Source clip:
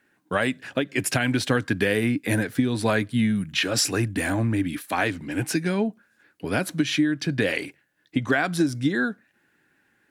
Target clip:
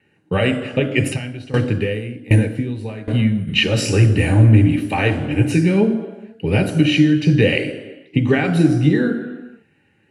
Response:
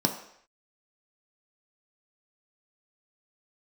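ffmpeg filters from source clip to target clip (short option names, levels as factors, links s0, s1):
-filter_complex "[1:a]atrim=start_sample=2205,afade=t=out:st=0.32:d=0.01,atrim=end_sample=14553,asetrate=22491,aresample=44100[s0];[0:a][s0]afir=irnorm=-1:irlink=0,asplit=3[s1][s2][s3];[s1]afade=t=out:st=1.12:d=0.02[s4];[s2]aeval=exprs='val(0)*pow(10,-20*if(lt(mod(1.3*n/s,1),2*abs(1.3)/1000),1-mod(1.3*n/s,1)/(2*abs(1.3)/1000),(mod(1.3*n/s,1)-2*abs(1.3)/1000)/(1-2*abs(1.3)/1000))/20)':c=same,afade=t=in:st=1.12:d=0.02,afade=t=out:st=3.47:d=0.02[s5];[s3]afade=t=in:st=3.47:d=0.02[s6];[s4][s5][s6]amix=inputs=3:normalize=0,volume=0.316"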